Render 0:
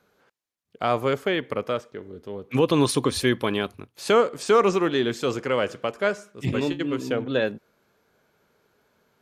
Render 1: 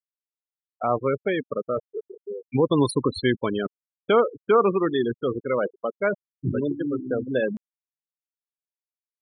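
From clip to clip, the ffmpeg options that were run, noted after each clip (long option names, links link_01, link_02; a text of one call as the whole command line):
ffmpeg -i in.wav -af "afftfilt=real='re*gte(hypot(re,im),0.112)':imag='im*gte(hypot(re,im),0.112)':win_size=1024:overlap=0.75,areverse,acompressor=mode=upward:threshold=-24dB:ratio=2.5,areverse" out.wav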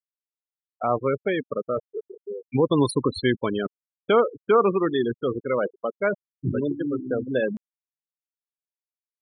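ffmpeg -i in.wav -af anull out.wav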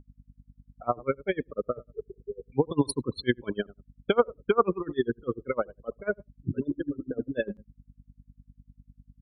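ffmpeg -i in.wav -filter_complex "[0:a]aeval=exprs='val(0)+0.00447*(sin(2*PI*50*n/s)+sin(2*PI*2*50*n/s)/2+sin(2*PI*3*50*n/s)/3+sin(2*PI*4*50*n/s)/4+sin(2*PI*5*50*n/s)/5)':channel_layout=same,asplit=2[link_01][link_02];[link_02]adelay=73,lowpass=frequency=910:poles=1,volume=-19.5dB,asplit=2[link_03][link_04];[link_04]adelay=73,lowpass=frequency=910:poles=1,volume=0.22[link_05];[link_01][link_03][link_05]amix=inputs=3:normalize=0,aeval=exprs='val(0)*pow(10,-29*(0.5-0.5*cos(2*PI*10*n/s))/20)':channel_layout=same,volume=1dB" out.wav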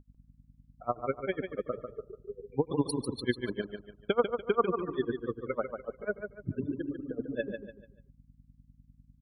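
ffmpeg -i in.wav -af "aecho=1:1:146|292|438|584:0.447|0.152|0.0516|0.0176,volume=-4.5dB" out.wav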